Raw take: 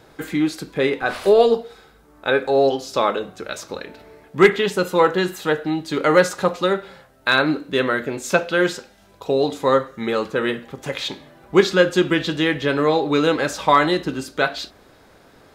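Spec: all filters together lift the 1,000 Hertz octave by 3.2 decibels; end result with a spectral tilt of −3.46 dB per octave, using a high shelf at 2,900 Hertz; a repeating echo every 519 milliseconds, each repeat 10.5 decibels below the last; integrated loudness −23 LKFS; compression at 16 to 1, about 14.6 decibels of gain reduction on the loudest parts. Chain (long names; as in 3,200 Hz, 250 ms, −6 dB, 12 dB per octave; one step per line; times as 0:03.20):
parametric band 1,000 Hz +3 dB
high-shelf EQ 2,900 Hz +7 dB
downward compressor 16 to 1, threshold −21 dBFS
repeating echo 519 ms, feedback 30%, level −10.5 dB
level +4 dB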